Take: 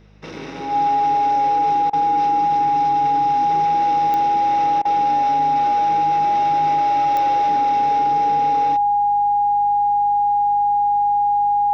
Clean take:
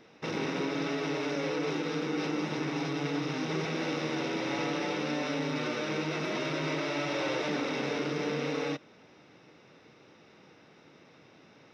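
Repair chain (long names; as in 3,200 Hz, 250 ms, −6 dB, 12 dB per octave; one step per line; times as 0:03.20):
click removal
hum removal 51.1 Hz, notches 4
notch filter 820 Hz, Q 30
repair the gap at 0:01.90/0:04.82, 30 ms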